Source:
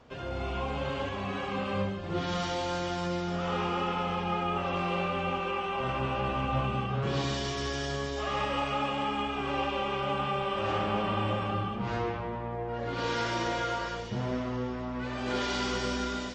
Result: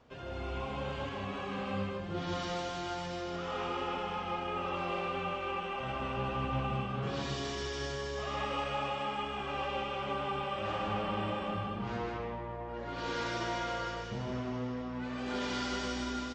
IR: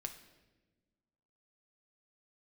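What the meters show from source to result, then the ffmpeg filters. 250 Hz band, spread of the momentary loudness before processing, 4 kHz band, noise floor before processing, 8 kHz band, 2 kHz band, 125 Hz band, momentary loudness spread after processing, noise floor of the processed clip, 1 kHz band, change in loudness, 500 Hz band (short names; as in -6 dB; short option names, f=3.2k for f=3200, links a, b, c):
-4.5 dB, 4 LU, -4.5 dB, -36 dBFS, -4.5 dB, -4.5 dB, -5.5 dB, 4 LU, -40 dBFS, -4.5 dB, -4.5 dB, -4.5 dB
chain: -af "aecho=1:1:156:0.668,volume=-6dB"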